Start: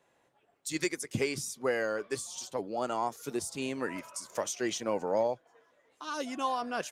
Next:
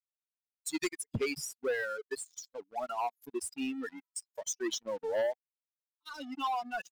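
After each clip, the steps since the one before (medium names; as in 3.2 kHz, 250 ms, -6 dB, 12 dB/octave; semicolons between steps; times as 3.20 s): expander on every frequency bin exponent 3; band-stop 1.2 kHz, Q 5.1; waveshaping leveller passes 3; trim -5 dB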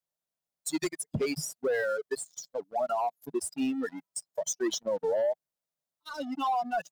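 fifteen-band graphic EQ 160 Hz +11 dB, 630 Hz +10 dB, 2.5 kHz -5 dB; peak limiter -26 dBFS, peak gain reduction 10 dB; trim +3.5 dB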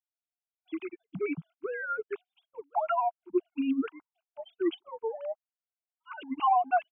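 formants replaced by sine waves; static phaser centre 2.7 kHz, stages 8; trim +7.5 dB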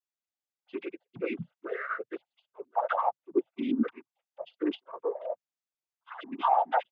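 noise-vocoded speech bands 16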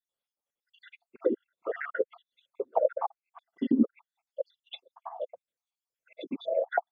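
random holes in the spectrogram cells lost 68%; small resonant body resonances 520/3400 Hz, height 11 dB, ringing for 20 ms; low-pass that closes with the level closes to 610 Hz, closed at -25 dBFS; trim +3.5 dB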